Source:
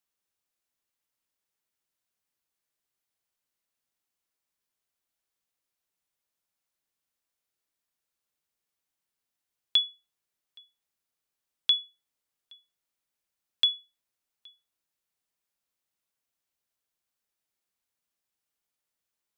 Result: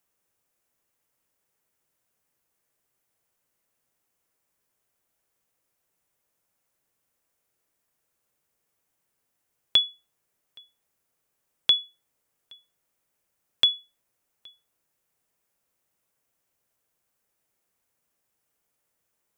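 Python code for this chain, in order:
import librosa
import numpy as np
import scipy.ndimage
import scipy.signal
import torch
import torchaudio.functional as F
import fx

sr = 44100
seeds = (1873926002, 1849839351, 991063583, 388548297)

y = fx.graphic_eq(x, sr, hz=(125, 500, 4000), db=(4, 4, -7))
y = y * librosa.db_to_amplitude(9.0)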